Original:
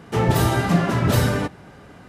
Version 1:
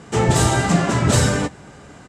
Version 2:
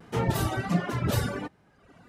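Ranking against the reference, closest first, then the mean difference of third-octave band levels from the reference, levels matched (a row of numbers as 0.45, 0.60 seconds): 1, 2; 2.5, 3.5 decibels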